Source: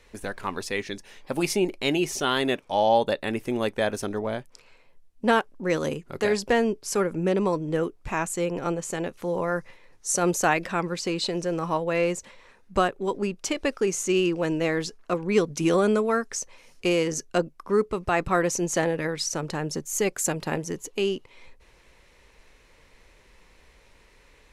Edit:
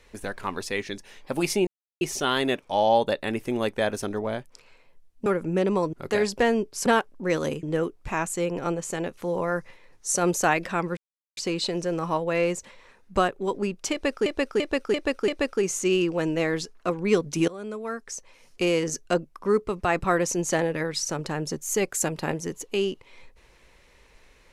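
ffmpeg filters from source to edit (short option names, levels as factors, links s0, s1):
-filter_complex "[0:a]asplit=13[s0][s1][s2][s3][s4][s5][s6][s7][s8][s9][s10][s11][s12];[s0]atrim=end=1.67,asetpts=PTS-STARTPTS,afade=t=out:st=1.666:d=0.004:c=hsin[s13];[s1]atrim=start=1.67:end=2.01,asetpts=PTS-STARTPTS,volume=0[s14];[s2]atrim=start=2.01:end=5.262,asetpts=PTS-STARTPTS,afade=t=in:d=0.004:c=hsin[s15];[s3]atrim=start=6.958:end=7.632[s16];[s4]atrim=start=6.028:end=6.962[s17];[s5]atrim=start=5.258:end=6.032[s18];[s6]atrim=start=7.628:end=10.97,asetpts=PTS-STARTPTS,afade=t=out:st=3.338:d=0.004:c=hsin,apad=pad_dur=0.4[s19];[s7]atrim=start=10.97:end=13.862,asetpts=PTS-STARTPTS,afade=t=in:d=0.004:c=hsin[s20];[s8]atrim=start=13.518:end=13.862[s21];[s9]atrim=start=13.518:end=13.862[s22];[s10]atrim=start=13.518:end=13.862[s23];[s11]atrim=start=13.518:end=15.72,asetpts=PTS-STARTPTS,afade=t=out:st=2.198:d=0.004:c=hsin:silence=0.0794328[s24];[s12]atrim=start=15.72,asetpts=PTS-STARTPTS,afade=t=in:d=1.25:silence=0.0794328[s25];[s13][s14][s15]concat=n=3:v=0:a=1[s26];[s26][s16]acrossfade=d=0.004:c1=hsin:c2=hsin[s27];[s27][s17]acrossfade=d=0.004:c1=hsin:c2=hsin[s28];[s28][s18]acrossfade=d=0.004:c1=hsin:c2=hsin[s29];[s19][s20]concat=n=2:v=0:a=1[s30];[s29][s30]acrossfade=d=0.004:c1=hsin:c2=hsin[s31];[s31][s21]acrossfade=d=0.004:c1=hsin:c2=hsin[s32];[s32][s22]acrossfade=d=0.004:c1=hsin:c2=hsin[s33];[s33][s23]acrossfade=d=0.004:c1=hsin:c2=hsin[s34];[s24][s25]concat=n=2:v=0:a=1[s35];[s34][s35]acrossfade=d=0.004:c1=hsin:c2=hsin"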